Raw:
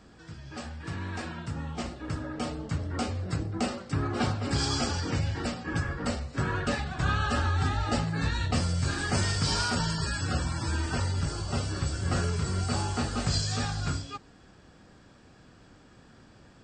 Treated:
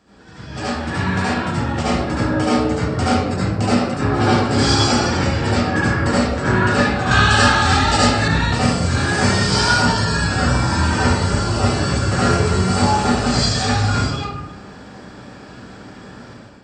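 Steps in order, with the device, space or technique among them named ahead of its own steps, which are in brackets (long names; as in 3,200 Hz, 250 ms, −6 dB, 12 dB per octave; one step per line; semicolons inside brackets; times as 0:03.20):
far laptop microphone (convolution reverb RT60 0.95 s, pre-delay 67 ms, DRR −9.5 dB; high-pass filter 140 Hz 6 dB per octave; automatic gain control gain up to 10.5 dB)
0:07.11–0:08.28: high-shelf EQ 2,300 Hz +10.5 dB
level −2 dB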